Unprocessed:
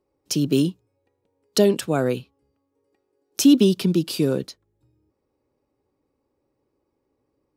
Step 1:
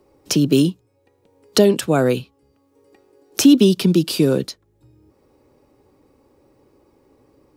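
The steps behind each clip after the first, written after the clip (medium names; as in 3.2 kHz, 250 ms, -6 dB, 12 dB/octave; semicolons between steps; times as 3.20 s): three bands compressed up and down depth 40%; trim +5 dB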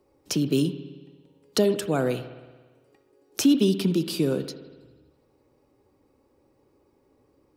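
spring tank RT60 1.4 s, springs 57 ms, chirp 25 ms, DRR 11 dB; trim -8 dB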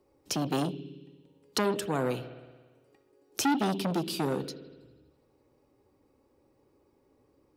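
transformer saturation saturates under 1 kHz; trim -3 dB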